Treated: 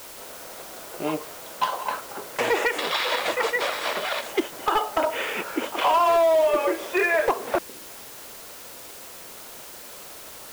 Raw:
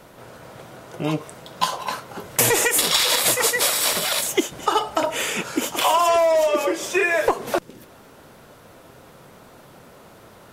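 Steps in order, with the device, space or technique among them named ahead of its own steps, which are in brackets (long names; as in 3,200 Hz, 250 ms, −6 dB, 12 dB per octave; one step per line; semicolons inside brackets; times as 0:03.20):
aircraft radio (band-pass filter 340–2,400 Hz; hard clipping −15 dBFS, distortion −17 dB; white noise bed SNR 16 dB)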